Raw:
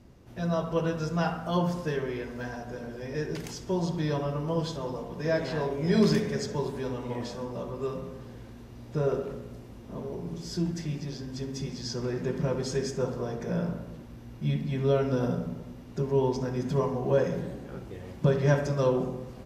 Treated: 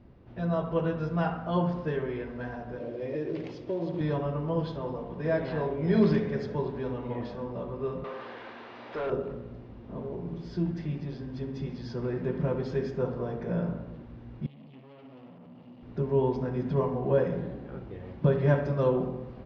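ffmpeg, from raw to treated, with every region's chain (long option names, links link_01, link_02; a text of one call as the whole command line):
ffmpeg -i in.wav -filter_complex "[0:a]asettb=1/sr,asplit=3[link_01][link_02][link_03];[link_01]atrim=end=2.804[link_04];[link_02]atrim=start=2.8:end=4.01,asetpts=PTS-STARTPTS,afade=type=in:duration=0.004:curve=qsin,afade=type=out:start_time=1.206:duration=0.004:curve=qsin,highpass=110,equalizer=frequency=210:width_type=q:width=4:gain=-7,equalizer=frequency=320:width_type=q:width=4:gain=9,equalizer=frequency=550:width_type=q:width=4:gain=9,equalizer=frequency=880:width_type=q:width=4:gain=-4,equalizer=frequency=1500:width_type=q:width=4:gain=-8,equalizer=frequency=2400:width_type=q:width=4:gain=3,lowpass=frequency=7700:width=0.5412,lowpass=frequency=7700:width=1.3066,acompressor=threshold=-28dB:ratio=4:attack=3.2:release=140:knee=1:detection=peak,acrusher=bits=5:mode=log:mix=0:aa=0.000001[link_05];[link_03]atrim=start=4.006[link_06];[link_04][link_05]acrossfade=duration=0.004:curve1=hsin:curve2=qsin[link_07];[link_07][link_06]acrossfade=duration=0.004:curve1=qsin:curve2=hsin,asettb=1/sr,asplit=3[link_08][link_09][link_10];[link_08]atrim=end=8.044[link_11];[link_09]atrim=start=8.04:end=9.1,asetpts=PTS-STARTPTS,afade=type=in:duration=0.004:curve=qsin,afade=type=out:start_time=1.056:duration=0.004:curve=qsin,highpass=frequency=1200:poles=1,asplit=2[link_12][link_13];[link_13]highpass=frequency=720:poles=1,volume=27dB,asoftclip=type=tanh:threshold=-24.5dB[link_14];[link_12][link_14]amix=inputs=2:normalize=0,lowpass=frequency=2300:poles=1,volume=-6dB[link_15];[link_10]atrim=start=9.096[link_16];[link_11][link_15]acrossfade=duration=0.004:curve1=hsin:curve2=qsin[link_17];[link_17][link_16]acrossfade=duration=0.004:curve1=qsin:curve2=hsin,asettb=1/sr,asplit=3[link_18][link_19][link_20];[link_18]atrim=end=14.464[link_21];[link_19]atrim=start=14.46:end=15.83,asetpts=PTS-STARTPTS,afade=type=in:duration=0.004:curve=qsin,afade=type=out:start_time=1.366:duration=0.004:curve=qsin,acompressor=threshold=-35dB:ratio=12:attack=3.2:release=140:knee=1:detection=peak,aeval=exprs='(tanh(224*val(0)+0.5)-tanh(0.5))/224':channel_layout=same,highpass=150,equalizer=frequency=250:width_type=q:width=4:gain=5,equalizer=frequency=420:width_type=q:width=4:gain=-5,equalizer=frequency=1500:width_type=q:width=4:gain=-8,equalizer=frequency=2900:width_type=q:width=4:gain=9,equalizer=frequency=4600:width_type=q:width=4:gain=5,lowpass=frequency=7400:width=0.5412,lowpass=frequency=7400:width=1.3066[link_22];[link_20]atrim=start=15.826[link_23];[link_21][link_22]acrossfade=duration=0.004:curve1=hsin:curve2=qsin[link_24];[link_24][link_23]acrossfade=duration=0.004:curve1=qsin:curve2=hsin,lowpass=frequency=4300:width=0.5412,lowpass=frequency=4300:width=1.3066,highshelf=frequency=3400:gain=-11.5" out.wav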